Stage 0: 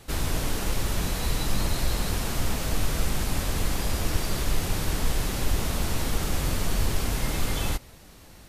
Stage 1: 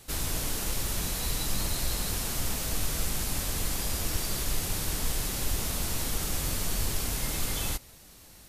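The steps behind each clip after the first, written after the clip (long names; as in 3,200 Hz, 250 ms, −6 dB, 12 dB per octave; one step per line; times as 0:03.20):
high-shelf EQ 4,100 Hz +10.5 dB
level −6 dB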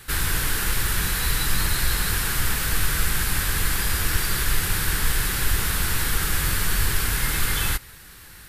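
graphic EQ with 15 bands 250 Hz −7 dB, 630 Hz −10 dB, 1,600 Hz +10 dB, 6,300 Hz −6 dB
level +8 dB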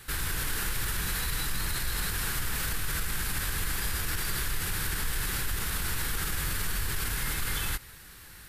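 brickwall limiter −17 dBFS, peak gain reduction 9.5 dB
level −4 dB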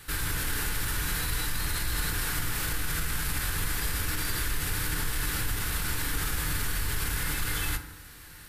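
feedback delay network reverb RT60 0.8 s, low-frequency decay 1.45×, high-frequency decay 0.45×, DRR 5.5 dB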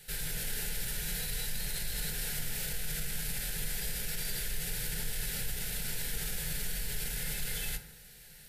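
phaser with its sweep stopped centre 300 Hz, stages 6
level −3.5 dB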